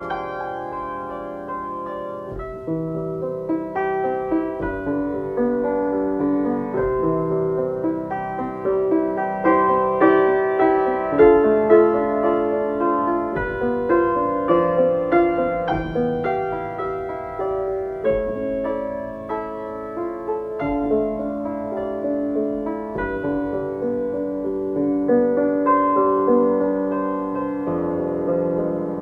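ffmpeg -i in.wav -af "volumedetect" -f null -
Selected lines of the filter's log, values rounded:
mean_volume: -20.8 dB
max_volume: -2.1 dB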